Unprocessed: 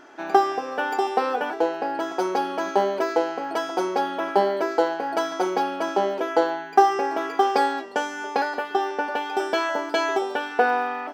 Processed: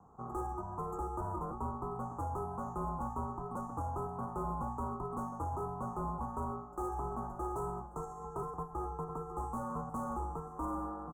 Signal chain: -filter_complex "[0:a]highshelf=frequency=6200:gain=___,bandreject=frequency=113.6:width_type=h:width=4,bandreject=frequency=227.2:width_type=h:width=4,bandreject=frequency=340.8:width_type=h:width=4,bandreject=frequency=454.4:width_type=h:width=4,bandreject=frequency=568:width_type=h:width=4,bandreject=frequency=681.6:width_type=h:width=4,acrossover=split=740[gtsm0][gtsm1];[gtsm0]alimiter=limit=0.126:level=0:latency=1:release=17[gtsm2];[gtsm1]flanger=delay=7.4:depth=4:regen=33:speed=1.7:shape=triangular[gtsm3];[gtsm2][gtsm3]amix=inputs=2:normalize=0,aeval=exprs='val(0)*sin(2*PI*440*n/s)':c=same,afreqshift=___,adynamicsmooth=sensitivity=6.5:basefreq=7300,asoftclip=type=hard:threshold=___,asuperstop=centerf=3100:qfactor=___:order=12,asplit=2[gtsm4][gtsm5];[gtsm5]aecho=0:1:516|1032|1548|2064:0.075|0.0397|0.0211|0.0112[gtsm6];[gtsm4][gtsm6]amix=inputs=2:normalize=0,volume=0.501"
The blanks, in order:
11, 14, 0.0447, 0.51